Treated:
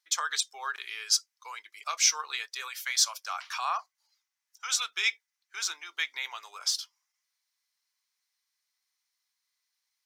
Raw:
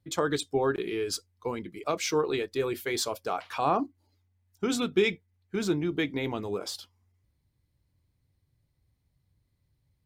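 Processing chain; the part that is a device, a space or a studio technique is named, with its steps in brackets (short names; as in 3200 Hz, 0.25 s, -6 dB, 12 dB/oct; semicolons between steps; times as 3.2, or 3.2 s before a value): headphones lying on a table (HPF 1100 Hz 24 dB/oct; bell 5800 Hz +11 dB 0.56 oct); 2.68–4.73 elliptic high-pass 510 Hz, stop band 40 dB; gain +2.5 dB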